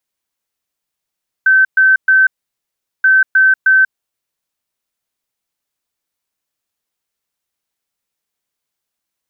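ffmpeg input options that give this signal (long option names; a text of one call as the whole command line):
ffmpeg -f lavfi -i "aevalsrc='0.501*sin(2*PI*1540*t)*clip(min(mod(mod(t,1.58),0.31),0.19-mod(mod(t,1.58),0.31))/0.005,0,1)*lt(mod(t,1.58),0.93)':duration=3.16:sample_rate=44100" out.wav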